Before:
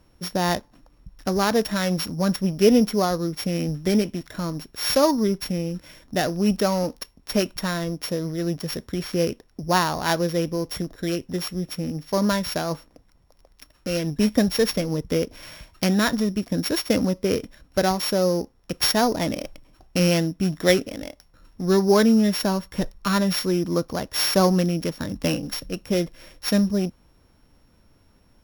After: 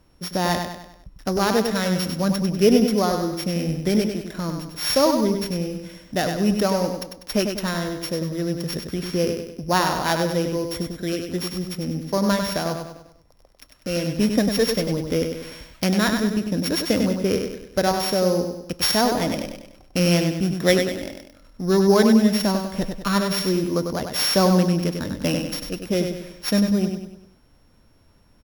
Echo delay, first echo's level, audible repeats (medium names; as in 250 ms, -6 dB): 98 ms, -6.0 dB, 5